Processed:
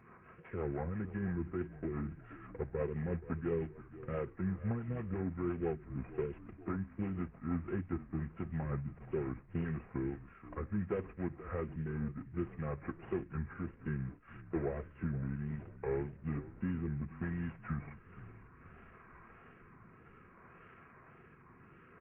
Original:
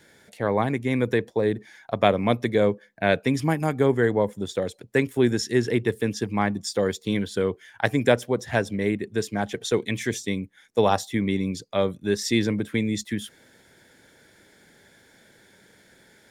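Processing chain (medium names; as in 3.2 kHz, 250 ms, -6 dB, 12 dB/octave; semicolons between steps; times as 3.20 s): CVSD coder 16 kbps; compression 2:1, threshold -41 dBFS, peak gain reduction 13.5 dB; rotary cabinet horn 8 Hz, later 0.85 Hz, at 6.31 s; wow and flutter 130 cents; comb of notches 400 Hz; frequency-shifting echo 353 ms, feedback 59%, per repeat -42 Hz, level -16 dB; speed mistake 45 rpm record played at 33 rpm; trim +1 dB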